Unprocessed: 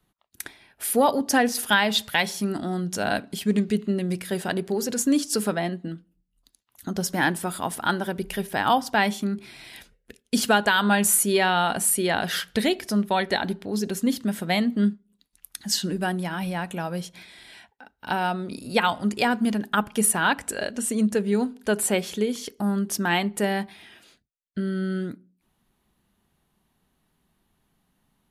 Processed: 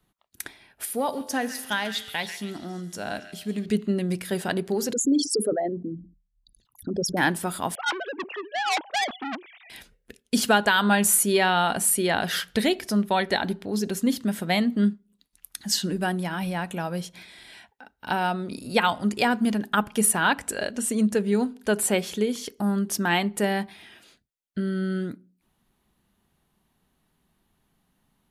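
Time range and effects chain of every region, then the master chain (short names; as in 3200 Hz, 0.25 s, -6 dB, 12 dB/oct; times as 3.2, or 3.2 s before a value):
0.85–3.66 resonator 87 Hz, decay 1.6 s + delay with a stepping band-pass 0.139 s, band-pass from 2200 Hz, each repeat 0.7 oct, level -8 dB
4.93–7.17 formant sharpening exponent 3 + sustainer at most 130 dB/s
7.75–9.7 sine-wave speech + core saturation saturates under 4000 Hz
whole clip: dry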